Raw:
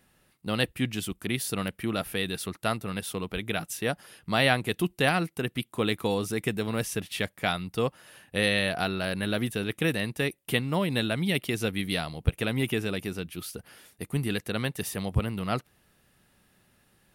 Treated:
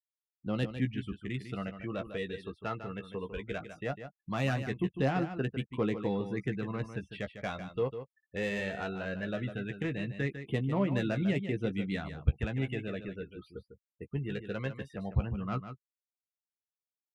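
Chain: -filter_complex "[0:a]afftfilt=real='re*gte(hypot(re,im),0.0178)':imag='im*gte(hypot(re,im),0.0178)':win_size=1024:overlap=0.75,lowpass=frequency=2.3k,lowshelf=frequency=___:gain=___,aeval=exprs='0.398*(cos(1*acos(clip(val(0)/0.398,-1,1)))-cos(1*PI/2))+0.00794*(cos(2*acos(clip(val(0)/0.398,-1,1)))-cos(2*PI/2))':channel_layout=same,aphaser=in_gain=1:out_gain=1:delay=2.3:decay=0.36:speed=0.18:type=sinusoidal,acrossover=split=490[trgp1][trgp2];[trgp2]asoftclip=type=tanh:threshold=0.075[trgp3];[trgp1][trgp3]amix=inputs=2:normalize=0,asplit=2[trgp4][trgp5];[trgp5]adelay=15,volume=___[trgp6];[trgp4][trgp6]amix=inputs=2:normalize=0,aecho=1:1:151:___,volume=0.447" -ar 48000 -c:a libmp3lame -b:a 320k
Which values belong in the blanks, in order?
80, 2.5, 0.398, 0.316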